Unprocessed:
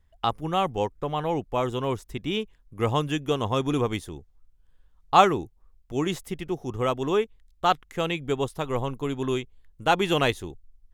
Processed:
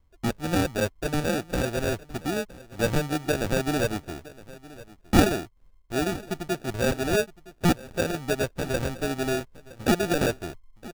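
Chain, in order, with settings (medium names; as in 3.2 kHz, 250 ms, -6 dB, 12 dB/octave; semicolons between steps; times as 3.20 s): low-pass 1.7 kHz 12 dB/octave; bass shelf 370 Hz -6.5 dB; band-stop 620 Hz, Q 12; in parallel at +0.5 dB: compression, threshold -32 dBFS, peak gain reduction 18.5 dB; on the sum: sample-and-hold 42×; delay 965 ms -19.5 dB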